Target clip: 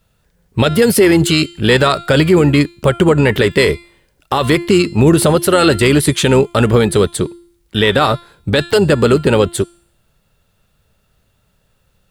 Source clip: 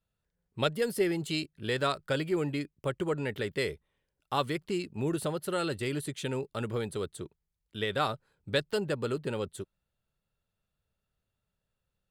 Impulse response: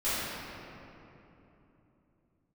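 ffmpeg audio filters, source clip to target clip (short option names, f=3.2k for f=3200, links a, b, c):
-filter_complex "[0:a]asplit=2[a][b];[b]asetrate=22050,aresample=44100,atempo=2,volume=-15dB[c];[a][c]amix=inputs=2:normalize=0,bandreject=f=344.8:t=h:w=4,bandreject=f=689.6:t=h:w=4,bandreject=f=1.0344k:t=h:w=4,bandreject=f=1.3792k:t=h:w=4,bandreject=f=1.724k:t=h:w=4,bandreject=f=2.0688k:t=h:w=4,bandreject=f=2.4136k:t=h:w=4,bandreject=f=2.7584k:t=h:w=4,bandreject=f=3.1032k:t=h:w=4,bandreject=f=3.448k:t=h:w=4,bandreject=f=3.7928k:t=h:w=4,bandreject=f=4.1376k:t=h:w=4,bandreject=f=4.4824k:t=h:w=4,bandreject=f=4.8272k:t=h:w=4,bandreject=f=5.172k:t=h:w=4,bandreject=f=5.5168k:t=h:w=4,bandreject=f=5.8616k:t=h:w=4,bandreject=f=6.2064k:t=h:w=4,bandreject=f=6.5512k:t=h:w=4,bandreject=f=6.896k:t=h:w=4,bandreject=f=7.2408k:t=h:w=4,bandreject=f=7.5856k:t=h:w=4,bandreject=f=7.9304k:t=h:w=4,bandreject=f=8.2752k:t=h:w=4,bandreject=f=8.62k:t=h:w=4,bandreject=f=8.9648k:t=h:w=4,bandreject=f=9.3096k:t=h:w=4,bandreject=f=9.6544k:t=h:w=4,bandreject=f=9.9992k:t=h:w=4,bandreject=f=10.344k:t=h:w=4,bandreject=f=10.6888k:t=h:w=4,bandreject=f=11.0336k:t=h:w=4,bandreject=f=11.3784k:t=h:w=4,alimiter=level_in=24.5dB:limit=-1dB:release=50:level=0:latency=1,volume=-1dB"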